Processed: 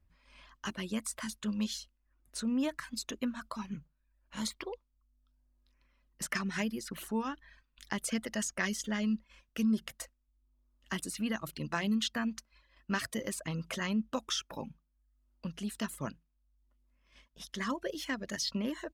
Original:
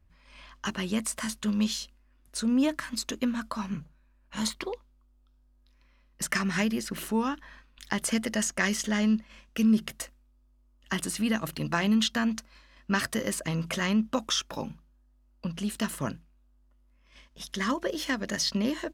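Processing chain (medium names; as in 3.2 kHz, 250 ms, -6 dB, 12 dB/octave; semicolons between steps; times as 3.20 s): reverb removal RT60 0.64 s; trim -6 dB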